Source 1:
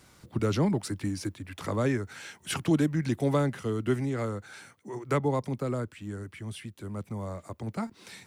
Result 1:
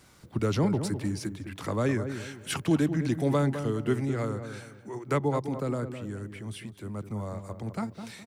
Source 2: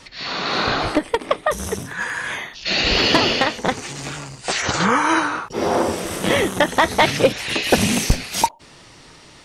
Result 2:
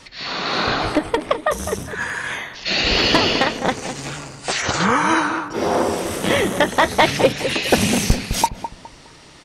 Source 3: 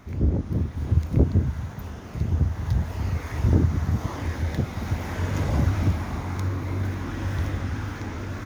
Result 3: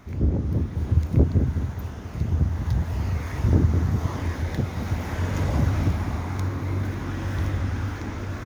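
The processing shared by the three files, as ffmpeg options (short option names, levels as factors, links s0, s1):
-filter_complex "[0:a]asplit=2[s0][s1];[s1]adelay=207,lowpass=f=1000:p=1,volume=0.398,asplit=2[s2][s3];[s3]adelay=207,lowpass=f=1000:p=1,volume=0.37,asplit=2[s4][s5];[s5]adelay=207,lowpass=f=1000:p=1,volume=0.37,asplit=2[s6][s7];[s7]adelay=207,lowpass=f=1000:p=1,volume=0.37[s8];[s0][s2][s4][s6][s8]amix=inputs=5:normalize=0"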